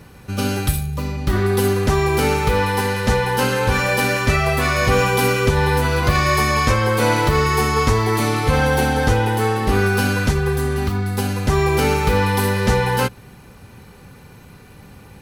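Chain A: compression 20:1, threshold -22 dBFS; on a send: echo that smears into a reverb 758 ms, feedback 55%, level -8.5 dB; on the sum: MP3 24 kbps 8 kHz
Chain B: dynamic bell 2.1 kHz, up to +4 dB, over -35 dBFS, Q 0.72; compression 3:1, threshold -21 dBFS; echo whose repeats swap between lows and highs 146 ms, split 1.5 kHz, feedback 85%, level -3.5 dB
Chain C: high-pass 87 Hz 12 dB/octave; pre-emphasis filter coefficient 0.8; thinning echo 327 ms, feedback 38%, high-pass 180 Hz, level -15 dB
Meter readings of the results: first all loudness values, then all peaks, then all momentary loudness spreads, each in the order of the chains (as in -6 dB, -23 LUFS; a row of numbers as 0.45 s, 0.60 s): -26.5 LUFS, -20.5 LUFS, -28.0 LUFS; -13.0 dBFS, -6.5 dBFS, -12.0 dBFS; 8 LU, 10 LU, 6 LU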